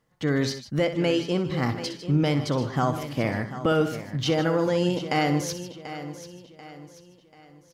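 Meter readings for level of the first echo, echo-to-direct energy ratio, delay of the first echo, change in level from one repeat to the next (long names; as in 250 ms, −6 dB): −11.5 dB, −7.5 dB, 62 ms, repeats not evenly spaced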